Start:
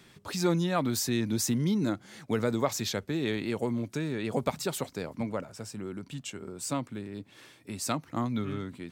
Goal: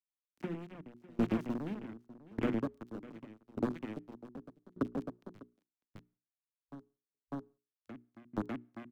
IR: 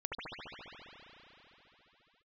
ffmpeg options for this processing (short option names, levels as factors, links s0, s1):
-filter_complex "[0:a]deesser=0.45,acrusher=bits=3:mix=0:aa=0.000001,highshelf=f=6200:g=-11.5,afwtdn=0.0224,aecho=1:1:599:0.422,acrossover=split=170|390|1400[s0][s1][s2][s3];[s0]acompressor=threshold=0.0141:ratio=4[s4];[s1]acompressor=threshold=0.0141:ratio=4[s5];[s2]acompressor=threshold=0.00708:ratio=4[s6];[s3]acompressor=threshold=0.00891:ratio=4[s7];[s4][s5][s6][s7]amix=inputs=4:normalize=0,equalizer=f=260:t=o:w=1.3:g=13.5,bandreject=f=60:t=h:w=6,bandreject=f=120:t=h:w=6,bandreject=f=180:t=h:w=6,bandreject=f=240:t=h:w=6,bandreject=f=300:t=h:w=6,bandreject=f=360:t=h:w=6,bandreject=f=420:t=h:w=6,asplit=2[s8][s9];[1:a]atrim=start_sample=2205,afade=t=out:st=0.4:d=0.01,atrim=end_sample=18081,asetrate=83790,aresample=44100[s10];[s9][s10]afir=irnorm=-1:irlink=0,volume=0.0422[s11];[s8][s11]amix=inputs=2:normalize=0,aeval=exprs='val(0)*pow(10,-29*if(lt(mod(0.84*n/s,1),2*abs(0.84)/1000),1-mod(0.84*n/s,1)/(2*abs(0.84)/1000),(mod(0.84*n/s,1)-2*abs(0.84)/1000)/(1-2*abs(0.84)/1000))/20)':c=same,volume=0.891"